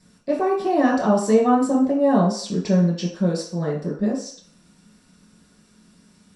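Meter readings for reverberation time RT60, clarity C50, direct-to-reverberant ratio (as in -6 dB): 0.50 s, 6.0 dB, -4.5 dB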